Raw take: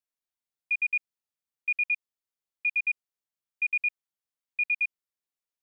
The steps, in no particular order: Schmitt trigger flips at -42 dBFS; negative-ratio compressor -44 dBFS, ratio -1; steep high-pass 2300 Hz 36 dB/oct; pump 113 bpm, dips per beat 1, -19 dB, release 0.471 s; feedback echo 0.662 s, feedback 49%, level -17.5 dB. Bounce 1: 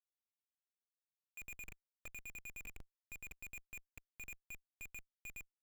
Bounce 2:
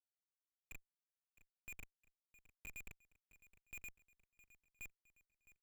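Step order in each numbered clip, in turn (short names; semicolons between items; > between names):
pump > feedback echo > negative-ratio compressor > steep high-pass > Schmitt trigger; pump > steep high-pass > negative-ratio compressor > Schmitt trigger > feedback echo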